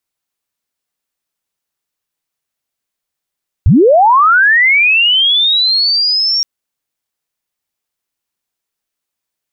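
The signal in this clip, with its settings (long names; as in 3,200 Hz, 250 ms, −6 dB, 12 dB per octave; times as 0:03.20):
glide linear 61 Hz → 5,600 Hz −3.5 dBFS → −10.5 dBFS 2.77 s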